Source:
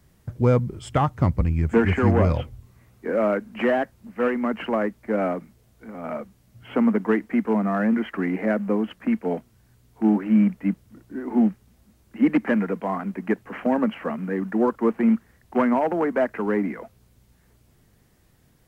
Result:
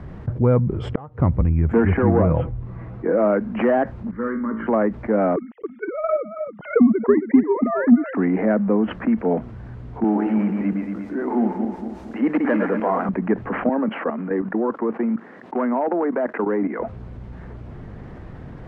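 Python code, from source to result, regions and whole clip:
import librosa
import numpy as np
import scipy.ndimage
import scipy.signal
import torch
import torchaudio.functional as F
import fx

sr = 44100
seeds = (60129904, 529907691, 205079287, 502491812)

y = fx.chain(x, sr, fx.peak_eq(hz=470.0, db=13.0, octaves=0.35),
    fx.gate_flip(shuts_db=-14.0, range_db=-41), at=(0.79, 1.2))
y = fx.chain(y, sr, fx.high_shelf(hz=3100.0, db=-9.0),
    fx.comb(ms=6.1, depth=0.39), at=(1.94, 3.25))
y = fx.chain(y, sr, fx.high_shelf(hz=2600.0, db=-9.5),
    fx.fixed_phaser(hz=2600.0, stages=6),
    fx.comb_fb(f0_hz=56.0, decay_s=0.41, harmonics='all', damping=0.0, mix_pct=80), at=(4.11, 4.67))
y = fx.chain(y, sr, fx.sine_speech(),
    fx.echo_single(ms=275, db=-12.0),
    fx.transient(attack_db=12, sustain_db=-6), at=(5.36, 8.18))
y = fx.chain(y, sr, fx.reverse_delay_fb(ms=115, feedback_pct=49, wet_db=-6.5),
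    fx.bass_treble(bass_db=-13, treble_db=14), at=(10.04, 13.09))
y = fx.chain(y, sr, fx.highpass(hz=230.0, slope=24),
    fx.level_steps(step_db=14), at=(13.69, 16.8))
y = scipy.signal.sosfilt(scipy.signal.butter(2, 1400.0, 'lowpass', fs=sr, output='sos'), y)
y = fx.env_flatten(y, sr, amount_pct=50)
y = y * 10.0 ** (-5.0 / 20.0)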